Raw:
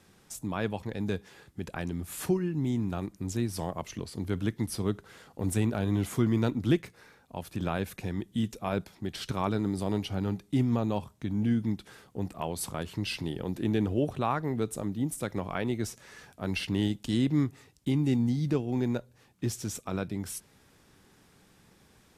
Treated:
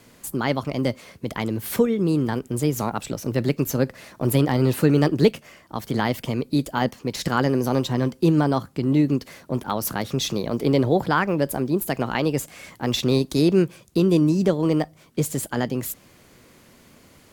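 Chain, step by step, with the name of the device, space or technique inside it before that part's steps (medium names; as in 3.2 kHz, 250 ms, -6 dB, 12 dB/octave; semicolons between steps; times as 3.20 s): nightcore (tape speed +28%); trim +8.5 dB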